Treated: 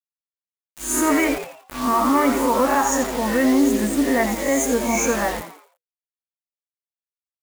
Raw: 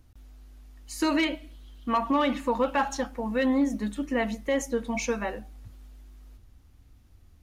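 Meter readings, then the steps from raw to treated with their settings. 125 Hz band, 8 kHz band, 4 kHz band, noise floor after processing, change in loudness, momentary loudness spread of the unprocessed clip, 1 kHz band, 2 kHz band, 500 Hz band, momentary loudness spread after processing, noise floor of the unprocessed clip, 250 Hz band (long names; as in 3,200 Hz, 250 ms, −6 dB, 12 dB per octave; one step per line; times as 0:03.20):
+6.0 dB, +16.0 dB, +4.5 dB, below −85 dBFS, +8.0 dB, 8 LU, +8.5 dB, +8.0 dB, +7.5 dB, 8 LU, −57 dBFS, +8.0 dB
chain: peak hold with a rise ahead of every peak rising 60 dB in 0.45 s
parametric band 270 Hz +7.5 dB 0.22 octaves
harmonic and percussive parts rebalanced percussive −6 dB
drawn EQ curve 450 Hz 0 dB, 720 Hz +5 dB, 2,100 Hz +4 dB, 4,100 Hz −19 dB, 6,700 Hz +13 dB
brickwall limiter −16.5 dBFS, peak gain reduction 7.5 dB
bit reduction 6 bits
echo with shifted repeats 85 ms, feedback 40%, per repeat +120 Hz, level −9.5 dB
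level +5.5 dB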